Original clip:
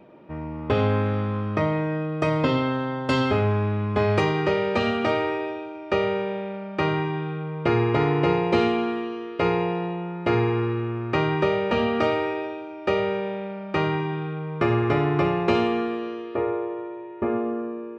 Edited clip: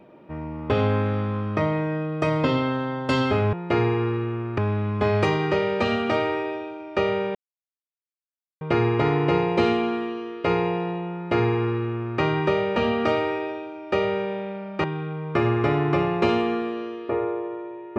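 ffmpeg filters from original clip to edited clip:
-filter_complex "[0:a]asplit=6[a][b][c][d][e][f];[a]atrim=end=3.532[g];[b]atrim=start=10.088:end=11.142[h];[c]atrim=start=3.528:end=6.3,asetpts=PTS-STARTPTS,afade=t=out:st=2.768:d=0.004:c=hsin[i];[d]atrim=start=6.3:end=7.56,asetpts=PTS-STARTPTS,volume=0[j];[e]atrim=start=7.56:end=13.792,asetpts=PTS-STARTPTS,afade=t=in:d=0.004:c=hsin[k];[f]atrim=start=14.098[l];[g][h]acrossfade=d=0.004:c1=hsin:c2=hsin[m];[i][j][k]concat=n=3:v=0:a=1[n];[m][n]acrossfade=d=0.004:c1=hsin:c2=hsin[o];[o][l]acrossfade=d=0.004:c1=hsin:c2=hsin"

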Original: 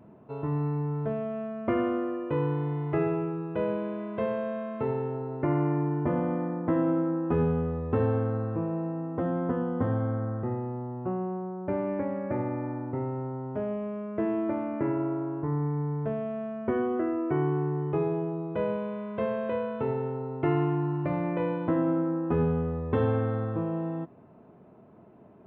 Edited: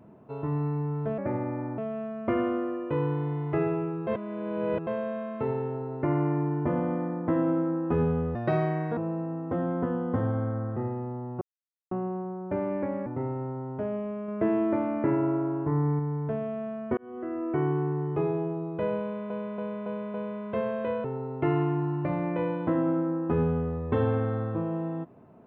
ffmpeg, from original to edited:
-filter_complex "[0:a]asplit=17[a][b][c][d][e][f][g][h][i][j][k][l][m][n][o][p][q];[a]atrim=end=1.182[r];[b]atrim=start=12.228:end=12.832[s];[c]atrim=start=1.178:end=3.472[t];[d]atrim=start=3.468:end=4.272,asetpts=PTS-STARTPTS,areverse[u];[e]atrim=start=4.268:end=7.754[v];[f]atrim=start=7.75:end=8.64,asetpts=PTS-STARTPTS,asetrate=63063,aresample=44100[w];[g]atrim=start=8.636:end=11.08,asetpts=PTS-STARTPTS,afade=t=out:st=2.44:d=0.004:c=hsin,apad=pad_dur=0.5[x];[h]atrim=start=11.08:end=12.232,asetpts=PTS-STARTPTS,afade=t=in:d=0.004:c=hsin[y];[i]atrim=start=12.828:end=14.052[z];[j]atrim=start=14.048:end=15.762,asetpts=PTS-STARTPTS,volume=3dB[aa];[k]atrim=start=15.758:end=16.74,asetpts=PTS-STARTPTS,afade=t=out:st=0.978:d=0.004:c=hsin[ab];[l]atrim=start=16.74:end=19.072,asetpts=PTS-STARTPTS,afade=t=in:d=0.58[ac];[m]atrim=start=18.788:end=19.072[ad];[n]atrim=start=18.788:end=19.072[ae];[o]atrim=start=18.788:end=19.072[af];[p]atrim=start=18.788:end=19.692[ag];[q]atrim=start=20.048[ah];[r][s]acrossfade=d=0.004:c1=hsin:c2=hsin[ai];[ai][t]acrossfade=d=0.004:c1=hsin:c2=hsin[aj];[aj][u]acrossfade=d=0.004:c1=hsin:c2=hsin[ak];[ak][v]acrossfade=d=0.004:c1=hsin:c2=hsin[al];[al][w]acrossfade=d=0.004:c1=hsin:c2=hsin[am];[x][y]concat=n=2:v=0:a=1[an];[am][an]acrossfade=d=0.004:c1=hsin:c2=hsin[ao];[ao][z]acrossfade=d=0.004:c1=hsin:c2=hsin[ap];[ap][aa]acrossfade=d=0.004:c1=hsin:c2=hsin[aq];[ab][ac]concat=n=2:v=0:a=1[ar];[aq][ar]acrossfade=d=0.004:c1=hsin:c2=hsin[as];[as][ad]acrossfade=d=0.004:c1=hsin:c2=hsin[at];[at][ae]acrossfade=d=0.004:c1=hsin:c2=hsin[au];[au][af]acrossfade=d=0.004:c1=hsin:c2=hsin[av];[av][ag]acrossfade=d=0.004:c1=hsin:c2=hsin[aw];[aw][ah]acrossfade=d=0.004:c1=hsin:c2=hsin"

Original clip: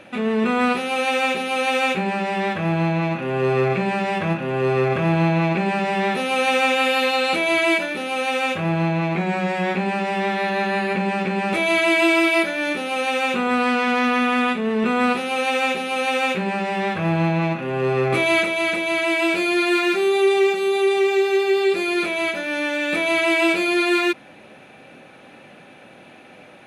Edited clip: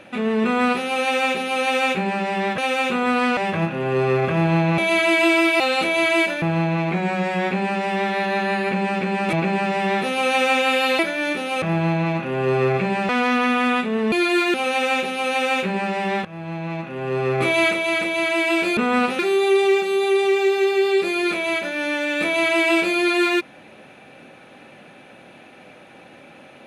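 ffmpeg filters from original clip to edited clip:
-filter_complex "[0:a]asplit=15[a][b][c][d][e][f][g][h][i][j][k][l][m][n][o];[a]atrim=end=2.582[p];[b]atrim=start=13.018:end=13.812[q];[c]atrim=start=4.048:end=5.462[r];[d]atrim=start=11.568:end=12.392[s];[e]atrim=start=7.118:end=7.942[t];[f]atrim=start=8.658:end=11.572[u];[g]atrim=start=5.458:end=7.122[v];[h]atrim=start=12.388:end=13.022[w];[i]atrim=start=2.578:end=4.052[x];[j]atrim=start=13.808:end=14.842[y];[k]atrim=start=19.488:end=19.912[z];[l]atrim=start=15.258:end=16.97,asetpts=PTS-STARTPTS,afade=t=out:st=1.708:d=0.004:c=hsin:silence=0.125893[aa];[m]atrim=start=16.97:end=19.492,asetpts=PTS-STARTPTS,afade=t=in:d=1.26:silence=0.125893[ab];[n]atrim=start=14.838:end=15.262[ac];[o]atrim=start=19.908[ad];[p][q]acrossfade=d=0.004:c1=hsin:c2=hsin[ae];[ae][r]acrossfade=d=0.004:c1=hsin:c2=hsin[af];[af][s]acrossfade=d=0.004:c1=hsin:c2=hsin[ag];[ag][t]acrossfade=d=0.004:c1=hsin:c2=hsin[ah];[ah][u]acrossfade=d=0.004:c1=hsin:c2=hsin[ai];[ai][v]acrossfade=d=0.004:c1=hsin:c2=hsin[aj];[aj][w]acrossfade=d=0.004:c1=hsin:c2=hsin[ak];[ak][x]acrossfade=d=0.004:c1=hsin:c2=hsin[al];[al][y]acrossfade=d=0.004:c1=hsin:c2=hsin[am];[am][z]acrossfade=d=0.004:c1=hsin:c2=hsin[an];[aa][ab]concat=n=2:v=0:a=1[ao];[an][ao]acrossfade=d=0.004:c1=hsin:c2=hsin[ap];[ap][ac]acrossfade=d=0.004:c1=hsin:c2=hsin[aq];[aq][ad]acrossfade=d=0.004:c1=hsin:c2=hsin"

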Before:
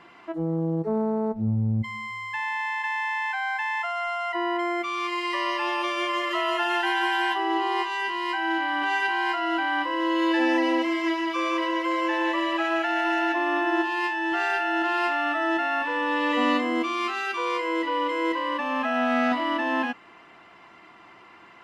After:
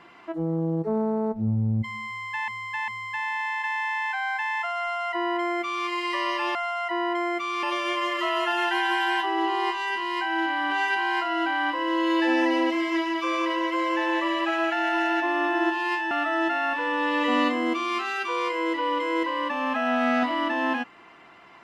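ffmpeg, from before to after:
-filter_complex "[0:a]asplit=6[a][b][c][d][e][f];[a]atrim=end=2.482[g];[b]atrim=start=2.078:end=2.482[h];[c]atrim=start=2.078:end=5.752[i];[d]atrim=start=3.988:end=5.072[j];[e]atrim=start=5.748:end=14.232[k];[f]atrim=start=15.198[l];[g][h]acrossfade=d=0.004:c1=hsin:c2=hsin[m];[m][i]acrossfade=d=0.004:c1=hsin:c2=hsin[n];[n][j]acrossfade=d=0.004:c1=hsin:c2=hsin[o];[o][k]acrossfade=d=0.004:c1=hsin:c2=hsin[p];[p][l]acrossfade=d=0.004:c1=hsin:c2=hsin"

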